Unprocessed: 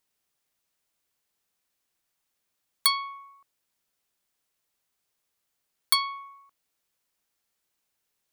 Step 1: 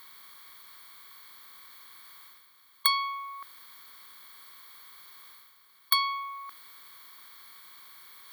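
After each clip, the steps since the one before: spectral levelling over time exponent 0.6; reverse; upward compressor, threshold -38 dBFS; reverse; peaking EQ 7.7 kHz -11.5 dB 1.1 oct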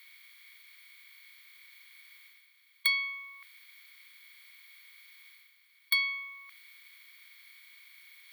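resonant high-pass 2.3 kHz, resonance Q 5.6; trim -8 dB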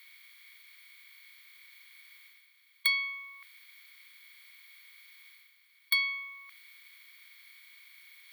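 no audible change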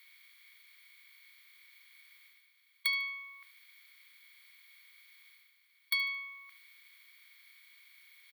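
feedback delay 74 ms, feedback 37%, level -16 dB; trim -4.5 dB

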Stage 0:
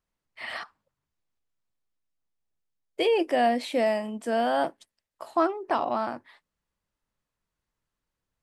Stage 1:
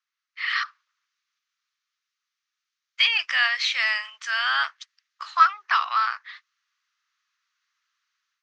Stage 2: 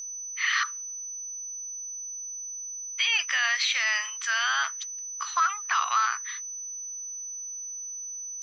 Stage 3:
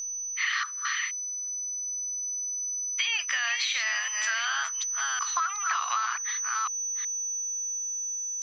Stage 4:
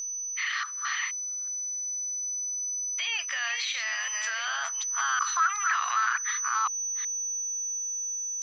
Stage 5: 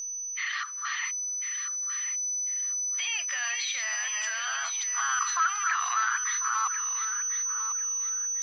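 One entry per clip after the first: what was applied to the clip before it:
Chebyshev band-pass 1.2–6.3 kHz, order 4; level rider gain up to 9.5 dB; trim +4.5 dB
peak limiter -17.5 dBFS, peak gain reduction 11.5 dB; whistle 6 kHz -36 dBFS; trim +1.5 dB
chunks repeated in reverse 371 ms, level -6.5 dB; compression 6:1, threshold -28 dBFS, peak gain reduction 8.5 dB; trim +3 dB
peak limiter -21.5 dBFS, peak gain reduction 6.5 dB; sweeping bell 0.26 Hz 370–1800 Hz +10 dB
coarse spectral quantiser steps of 15 dB; on a send: thinning echo 1046 ms, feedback 27%, high-pass 980 Hz, level -8.5 dB; on the sum: trim -1 dB

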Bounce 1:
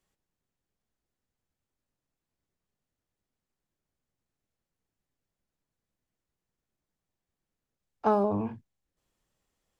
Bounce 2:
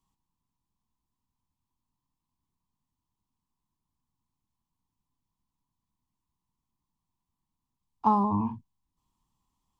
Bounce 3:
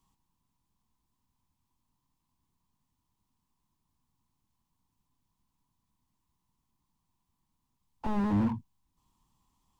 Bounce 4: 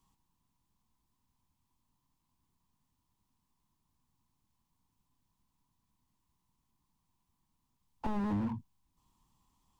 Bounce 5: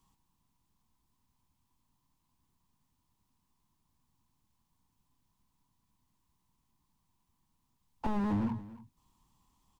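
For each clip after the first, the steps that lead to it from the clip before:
FFT filter 260 Hz 0 dB, 570 Hz -21 dB, 1 kHz +9 dB, 1.5 kHz -18 dB, 3.2 kHz -6 dB; trim +3.5 dB
slew-rate limiter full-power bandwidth 8.4 Hz; trim +5 dB
compression 5:1, threshold -30 dBFS, peak gain reduction 7.5 dB
delay 283 ms -17.5 dB; trim +2 dB

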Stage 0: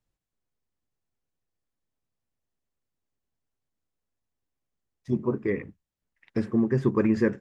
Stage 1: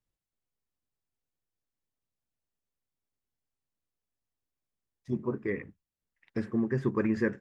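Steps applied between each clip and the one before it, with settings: dynamic bell 1.7 kHz, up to +5 dB, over -50 dBFS, Q 1.9; trim -5.5 dB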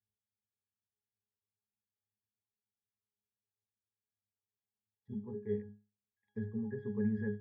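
in parallel at -1 dB: peak limiter -23 dBFS, peak gain reduction 7 dB; on the sum: pitch-class resonator G#, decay 0.31 s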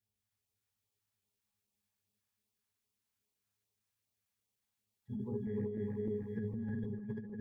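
backward echo that repeats 152 ms, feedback 82%, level -1.5 dB; LFO notch sine 2.5 Hz 320–1700 Hz; compressor with a negative ratio -39 dBFS, ratio -1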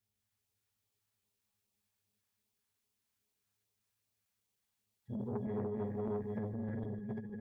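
delay 152 ms -15 dB; transformer saturation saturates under 440 Hz; trim +2 dB

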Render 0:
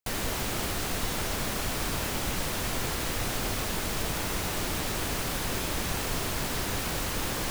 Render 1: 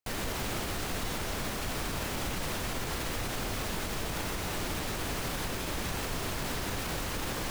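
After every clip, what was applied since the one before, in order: peak limiter -23.5 dBFS, peak gain reduction 6.5 dB; treble shelf 5.3 kHz -4 dB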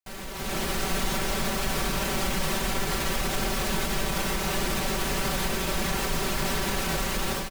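comb 5.2 ms, depth 82%; level rider gain up to 12 dB; trim -7.5 dB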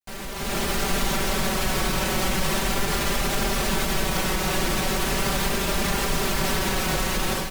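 vibrato 0.39 Hz 45 cents; trim +3.5 dB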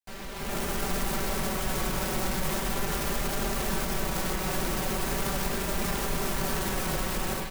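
tracing distortion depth 0.38 ms; trim -5 dB

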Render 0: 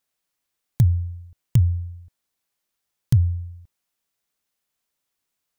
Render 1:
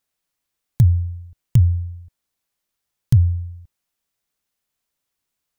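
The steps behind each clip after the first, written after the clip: bass shelf 130 Hz +5.5 dB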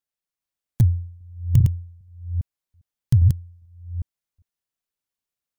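chunks repeated in reverse 402 ms, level -2.5 dB; upward expansion 1.5:1, over -28 dBFS; trim -2 dB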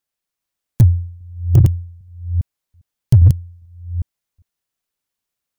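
overload inside the chain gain 10 dB; trim +6.5 dB

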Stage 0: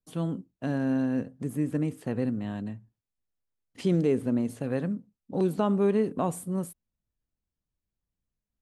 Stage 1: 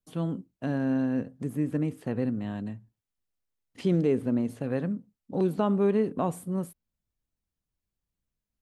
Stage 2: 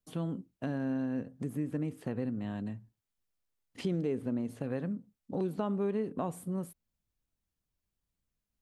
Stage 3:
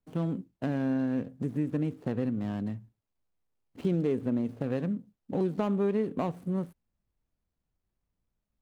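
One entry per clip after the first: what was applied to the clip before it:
dynamic bell 8.4 kHz, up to -6 dB, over -58 dBFS, Q 0.74
compression 2:1, threshold -35 dBFS, peak gain reduction 8.5 dB
median filter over 25 samples; trim +4.5 dB

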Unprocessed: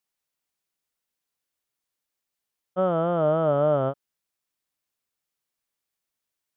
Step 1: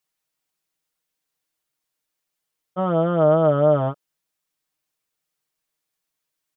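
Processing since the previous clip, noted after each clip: comb 6.4 ms; trim +2 dB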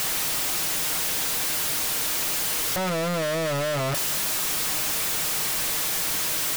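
one-bit comparator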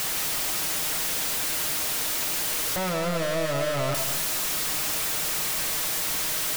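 reverberation RT60 0.50 s, pre-delay 123 ms, DRR 7 dB; trim -2 dB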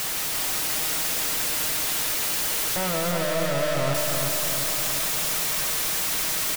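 feedback delay 351 ms, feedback 52%, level -4.5 dB

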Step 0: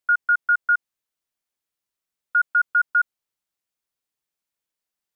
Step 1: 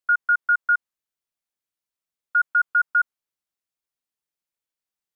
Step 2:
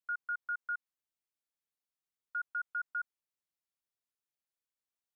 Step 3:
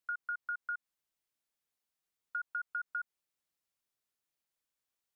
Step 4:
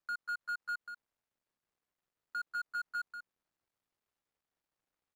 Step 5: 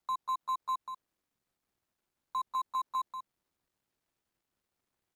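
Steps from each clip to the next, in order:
dynamic bell 1.2 kHz, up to +5 dB, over -31 dBFS, Q 1.3; trim -4.5 dB
peak limiter -24 dBFS, peak gain reduction 10.5 dB; trim -7 dB
compression, threshold -39 dBFS, peak gain reduction 6 dB; trim +4 dB
median filter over 15 samples; peak limiter -42 dBFS, peak gain reduction 10.5 dB; delay 189 ms -8 dB; trim +8.5 dB
frequency shift -390 Hz; trim +4.5 dB

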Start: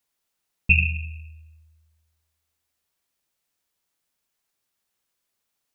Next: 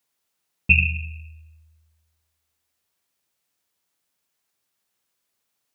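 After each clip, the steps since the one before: high-pass 67 Hz; trim +2 dB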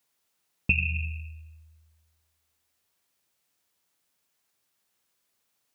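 compression 6:1, threshold -22 dBFS, peak gain reduction 12 dB; trim +1 dB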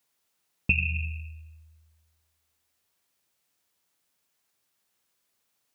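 no audible change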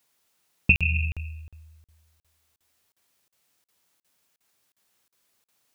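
crackling interface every 0.36 s, samples 2048, zero, from 0.76 s; trim +5 dB

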